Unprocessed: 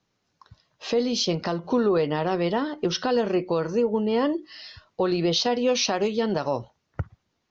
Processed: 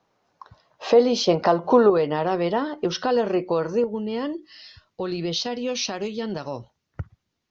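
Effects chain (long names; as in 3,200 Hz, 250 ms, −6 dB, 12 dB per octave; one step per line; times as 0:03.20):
parametric band 750 Hz +14 dB 2.3 octaves, from 0:01.90 +5 dB, from 0:03.84 −4.5 dB
level −2 dB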